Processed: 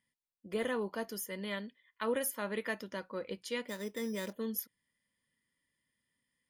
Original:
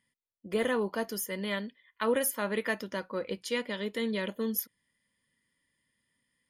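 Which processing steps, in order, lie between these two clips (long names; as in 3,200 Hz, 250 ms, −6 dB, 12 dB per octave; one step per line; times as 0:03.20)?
0:03.68–0:04.33: bad sample-rate conversion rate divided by 8×, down filtered, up hold
level −5.5 dB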